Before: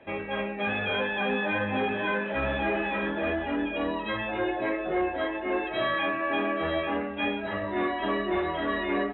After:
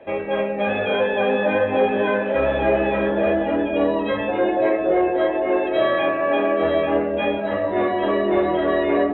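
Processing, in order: bell 540 Hz +10.5 dB 1.1 oct; dark delay 0.191 s, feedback 63%, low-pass 490 Hz, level -4 dB; gain +2 dB

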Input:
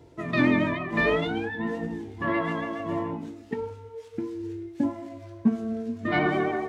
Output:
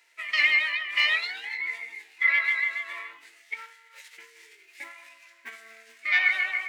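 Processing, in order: high shelf 3500 Hz +7 dB; short-mantissa float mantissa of 6-bit; formant shift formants +3 st; resonant high-pass 2000 Hz, resonance Q 5.1; gain -3 dB

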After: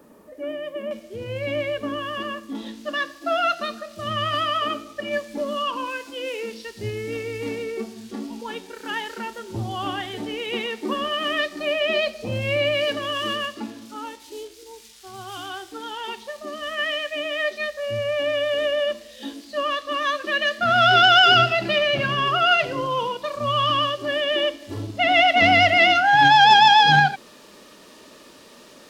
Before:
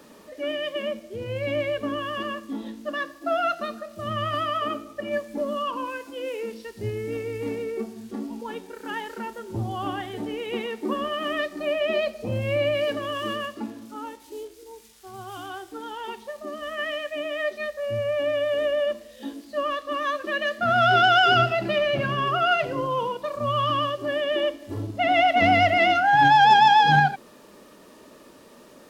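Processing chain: bell 4100 Hz -11.5 dB 2.4 oct, from 0.91 s +2.5 dB, from 2.55 s +9 dB

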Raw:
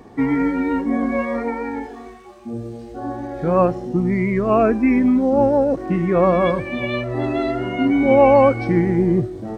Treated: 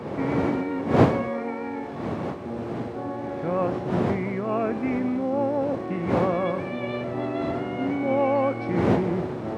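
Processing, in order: per-bin compression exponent 0.6; wind noise 460 Hz -17 dBFS; HPF 87 Hz 24 dB/oct; gain -12 dB

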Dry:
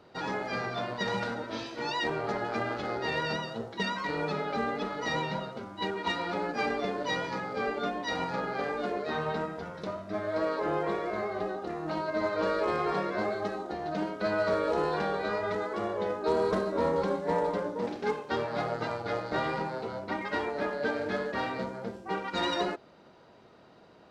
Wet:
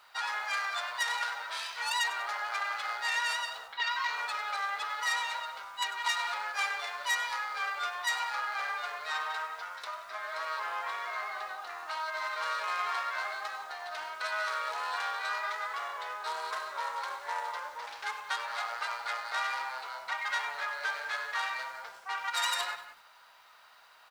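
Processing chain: tracing distortion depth 0.096 ms; compressor 1.5:1, threshold -34 dBFS, peak gain reduction 4.5 dB; HPF 1000 Hz 24 dB/oct; speakerphone echo 0.18 s, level -13 dB; added noise white -78 dBFS; 3.67–4.15 LPF 3500 Hz -> 7400 Hz 24 dB/oct; lo-fi delay 98 ms, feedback 35%, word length 9-bit, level -14 dB; gain +5.5 dB

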